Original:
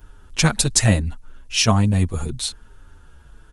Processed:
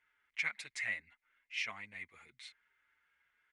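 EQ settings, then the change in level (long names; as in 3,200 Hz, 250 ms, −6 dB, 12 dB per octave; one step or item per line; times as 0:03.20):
resonant band-pass 2,100 Hz, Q 14
+1.0 dB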